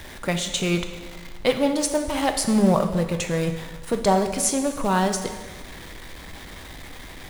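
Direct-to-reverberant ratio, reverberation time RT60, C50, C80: 6.0 dB, 1.4 s, 8.5 dB, 10.0 dB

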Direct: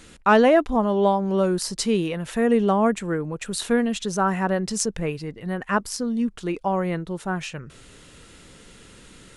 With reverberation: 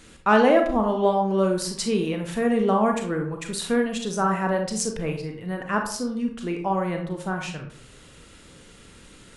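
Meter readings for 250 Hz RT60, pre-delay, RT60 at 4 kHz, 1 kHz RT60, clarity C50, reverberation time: 0.55 s, 30 ms, 0.35 s, 0.55 s, 6.5 dB, 0.55 s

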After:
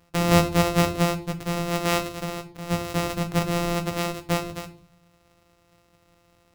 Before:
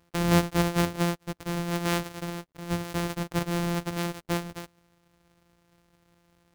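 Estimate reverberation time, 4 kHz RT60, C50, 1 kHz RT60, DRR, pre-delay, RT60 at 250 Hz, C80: 0.45 s, 0.35 s, 14.5 dB, 0.45 s, 5.5 dB, 7 ms, 0.80 s, 18.0 dB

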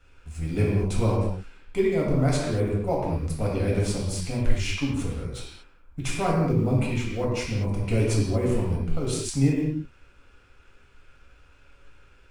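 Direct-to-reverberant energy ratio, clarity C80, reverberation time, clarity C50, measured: -4.5 dB, 3.0 dB, not exponential, 0.5 dB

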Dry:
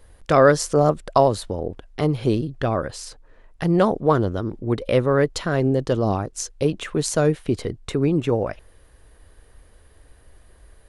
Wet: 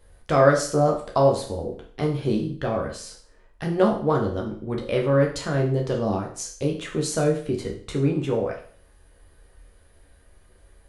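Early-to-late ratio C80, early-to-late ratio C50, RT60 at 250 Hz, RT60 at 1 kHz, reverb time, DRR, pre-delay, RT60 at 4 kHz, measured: 12.0 dB, 7.5 dB, 0.50 s, 0.50 s, 0.50 s, -0.5 dB, 11 ms, 0.50 s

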